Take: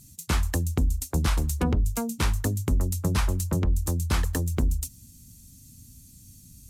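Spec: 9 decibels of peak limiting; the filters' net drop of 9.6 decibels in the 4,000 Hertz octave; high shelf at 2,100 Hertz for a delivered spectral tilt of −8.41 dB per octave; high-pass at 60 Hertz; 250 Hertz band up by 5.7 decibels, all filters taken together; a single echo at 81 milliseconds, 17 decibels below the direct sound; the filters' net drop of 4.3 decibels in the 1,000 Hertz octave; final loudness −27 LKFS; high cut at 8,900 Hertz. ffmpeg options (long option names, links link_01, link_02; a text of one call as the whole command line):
ffmpeg -i in.wav -af "highpass=60,lowpass=8900,equalizer=frequency=250:width_type=o:gain=7.5,equalizer=frequency=1000:width_type=o:gain=-4.5,highshelf=frequency=2100:gain=-3.5,equalizer=frequency=4000:width_type=o:gain=-9,alimiter=limit=-19dB:level=0:latency=1,aecho=1:1:81:0.141,volume=2.5dB" out.wav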